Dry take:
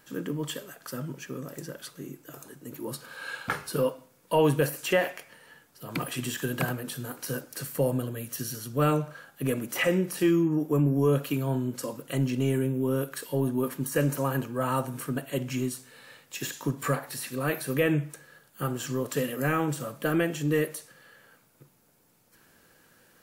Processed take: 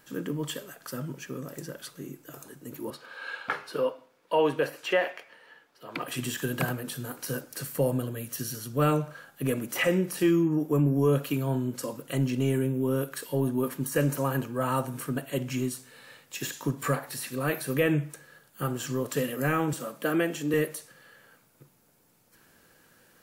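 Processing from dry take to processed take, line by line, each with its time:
0:02.90–0:06.08: three-way crossover with the lows and the highs turned down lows −15 dB, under 290 Hz, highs −15 dB, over 4,700 Hz
0:19.73–0:20.54: high-pass filter 180 Hz 24 dB per octave

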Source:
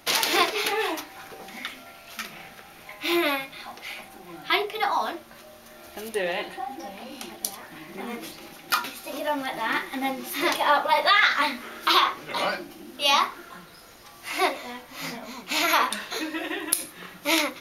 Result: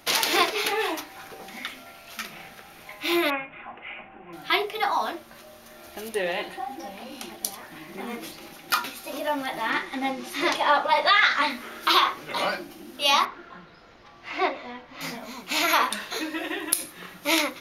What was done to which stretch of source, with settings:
0:03.30–0:04.33: elliptic low-pass filter 2,800 Hz
0:09.70–0:11.50: low-pass filter 8,200 Hz
0:13.25–0:15.01: high-frequency loss of the air 210 metres

